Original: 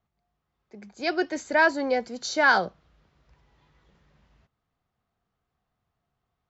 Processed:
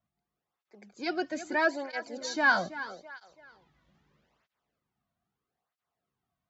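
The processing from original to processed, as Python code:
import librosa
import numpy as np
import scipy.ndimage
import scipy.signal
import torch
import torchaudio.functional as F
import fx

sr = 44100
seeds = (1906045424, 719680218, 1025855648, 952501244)

y = fx.echo_feedback(x, sr, ms=332, feedback_pct=36, wet_db=-13.5)
y = fx.flanger_cancel(y, sr, hz=0.78, depth_ms=2.5)
y = y * 10.0 ** (-2.5 / 20.0)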